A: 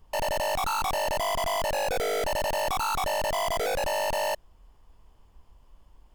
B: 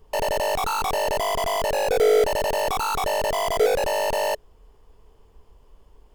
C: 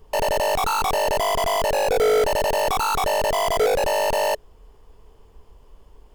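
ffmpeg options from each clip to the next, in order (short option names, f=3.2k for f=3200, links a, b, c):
-af "equalizer=f=430:t=o:w=0.4:g=13,volume=2.5dB"
-af "asoftclip=type=tanh:threshold=-17.5dB,volume=3.5dB"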